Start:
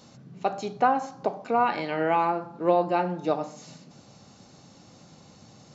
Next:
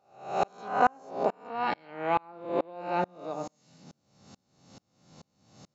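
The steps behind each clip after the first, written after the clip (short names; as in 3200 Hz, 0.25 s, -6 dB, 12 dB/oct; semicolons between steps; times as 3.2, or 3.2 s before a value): spectral swells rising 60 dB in 1.44 s; dB-ramp tremolo swelling 2.3 Hz, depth 34 dB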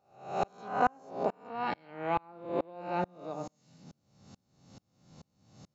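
low shelf 170 Hz +9 dB; gain -4.5 dB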